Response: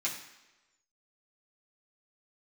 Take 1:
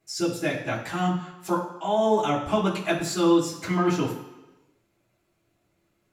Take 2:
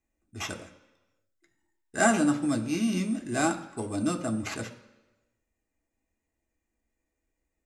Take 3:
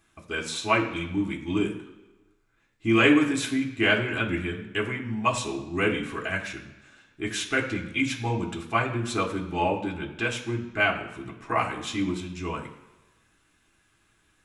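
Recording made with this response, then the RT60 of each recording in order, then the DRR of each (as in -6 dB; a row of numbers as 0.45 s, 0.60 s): 1; 1.1 s, 1.1 s, 1.1 s; -7.0 dB, 4.5 dB, -0.5 dB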